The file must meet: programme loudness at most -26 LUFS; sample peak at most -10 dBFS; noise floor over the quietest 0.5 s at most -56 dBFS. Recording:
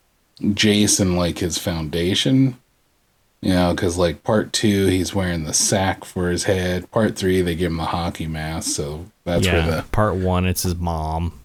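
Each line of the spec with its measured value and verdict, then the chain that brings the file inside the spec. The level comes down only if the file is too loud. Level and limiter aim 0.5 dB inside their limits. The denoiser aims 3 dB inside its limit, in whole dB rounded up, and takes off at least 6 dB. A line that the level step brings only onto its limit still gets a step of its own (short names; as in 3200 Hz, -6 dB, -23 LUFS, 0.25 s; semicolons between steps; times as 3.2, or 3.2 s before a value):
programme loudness -20.0 LUFS: fail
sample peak -5.5 dBFS: fail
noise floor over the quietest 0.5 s -62 dBFS: OK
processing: gain -6.5 dB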